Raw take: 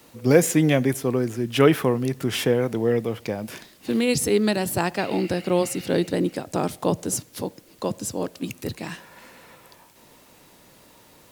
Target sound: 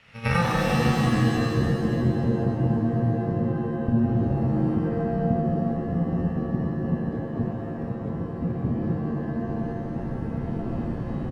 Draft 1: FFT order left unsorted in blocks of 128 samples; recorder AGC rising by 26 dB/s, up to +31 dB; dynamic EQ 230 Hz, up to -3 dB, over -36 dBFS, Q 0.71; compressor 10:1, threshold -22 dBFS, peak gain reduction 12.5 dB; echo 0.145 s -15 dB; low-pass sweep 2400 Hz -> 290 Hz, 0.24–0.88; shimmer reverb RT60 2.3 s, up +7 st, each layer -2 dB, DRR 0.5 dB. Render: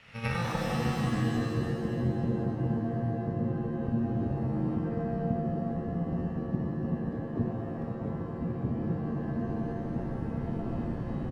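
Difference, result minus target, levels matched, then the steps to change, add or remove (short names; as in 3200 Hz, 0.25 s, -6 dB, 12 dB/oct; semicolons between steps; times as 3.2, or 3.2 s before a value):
compressor: peak gain reduction +12.5 dB
remove: compressor 10:1, threshold -22 dBFS, peak gain reduction 12.5 dB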